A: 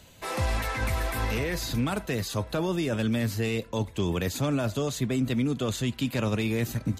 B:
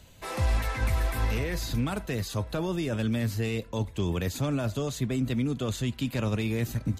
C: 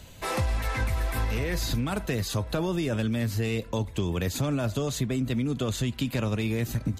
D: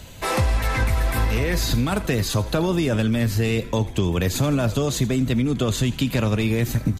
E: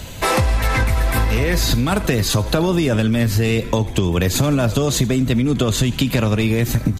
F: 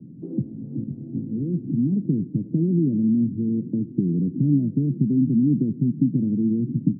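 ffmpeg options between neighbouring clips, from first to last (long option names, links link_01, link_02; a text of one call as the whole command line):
ffmpeg -i in.wav -af "lowshelf=frequency=84:gain=9.5,volume=-3dB" out.wav
ffmpeg -i in.wav -af "acompressor=threshold=-30dB:ratio=6,volume=6dB" out.wav
ffmpeg -i in.wav -filter_complex "[0:a]asplit=7[link_01][link_02][link_03][link_04][link_05][link_06][link_07];[link_02]adelay=82,afreqshift=-98,volume=-17dB[link_08];[link_03]adelay=164,afreqshift=-196,volume=-21.6dB[link_09];[link_04]adelay=246,afreqshift=-294,volume=-26.2dB[link_10];[link_05]adelay=328,afreqshift=-392,volume=-30.7dB[link_11];[link_06]adelay=410,afreqshift=-490,volume=-35.3dB[link_12];[link_07]adelay=492,afreqshift=-588,volume=-39.9dB[link_13];[link_01][link_08][link_09][link_10][link_11][link_12][link_13]amix=inputs=7:normalize=0,volume=6.5dB" out.wav
ffmpeg -i in.wav -af "acompressor=threshold=-22dB:ratio=6,volume=8.5dB" out.wav
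ffmpeg -i in.wav -af "asuperpass=centerf=210:order=8:qfactor=1.1" out.wav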